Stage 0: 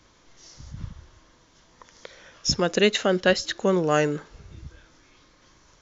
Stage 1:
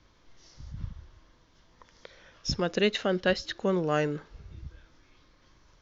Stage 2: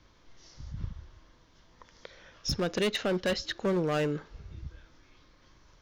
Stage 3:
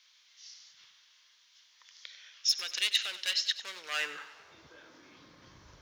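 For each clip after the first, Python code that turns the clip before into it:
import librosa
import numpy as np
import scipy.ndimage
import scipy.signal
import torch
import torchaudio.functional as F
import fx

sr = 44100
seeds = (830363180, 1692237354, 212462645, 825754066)

y1 = scipy.signal.sosfilt(scipy.signal.butter(4, 5600.0, 'lowpass', fs=sr, output='sos'), x)
y1 = fx.low_shelf(y1, sr, hz=100.0, db=8.0)
y1 = F.gain(torch.from_numpy(y1), -6.0).numpy()
y2 = np.clip(y1, -10.0 ** (-25.0 / 20.0), 10.0 ** (-25.0 / 20.0))
y2 = F.gain(torch.from_numpy(y2), 1.0).numpy()
y3 = fx.filter_sweep_highpass(y2, sr, from_hz=2900.0, to_hz=69.0, start_s=3.79, end_s=5.67, q=1.1)
y3 = fx.echo_feedback(y3, sr, ms=96, feedback_pct=53, wet_db=-14.0)
y3 = F.gain(torch.from_numpy(y3), 5.0).numpy()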